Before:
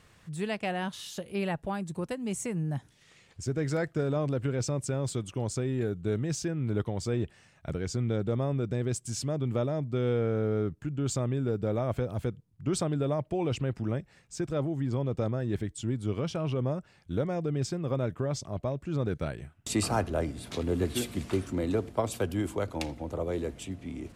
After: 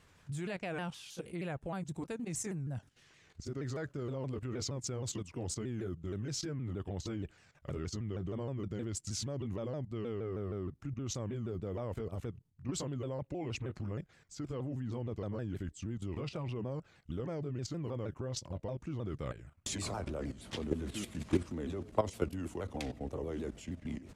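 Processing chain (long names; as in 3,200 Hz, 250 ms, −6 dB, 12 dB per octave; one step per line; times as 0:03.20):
pitch shifter swept by a sawtooth −3.5 semitones, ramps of 157 ms
output level in coarse steps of 13 dB
level +1 dB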